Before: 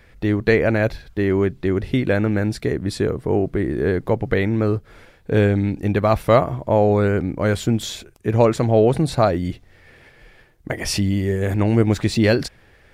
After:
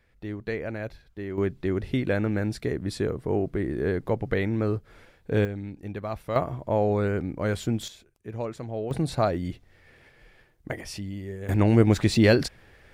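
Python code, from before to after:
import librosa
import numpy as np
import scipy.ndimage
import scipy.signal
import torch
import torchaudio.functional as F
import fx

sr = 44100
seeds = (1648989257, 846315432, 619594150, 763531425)

y = fx.gain(x, sr, db=fx.steps((0.0, -15.0), (1.38, -6.5), (5.45, -15.5), (6.36, -7.5), (7.88, -17.0), (8.91, -7.0), (10.81, -15.0), (11.49, -2.0)))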